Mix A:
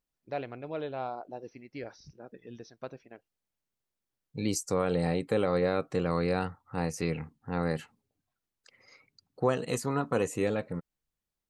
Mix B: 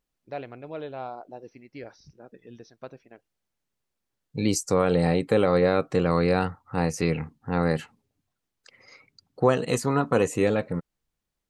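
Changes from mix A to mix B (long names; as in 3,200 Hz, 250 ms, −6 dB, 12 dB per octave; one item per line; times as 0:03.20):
second voice +6.5 dB
master: add high-shelf EQ 10,000 Hz −5.5 dB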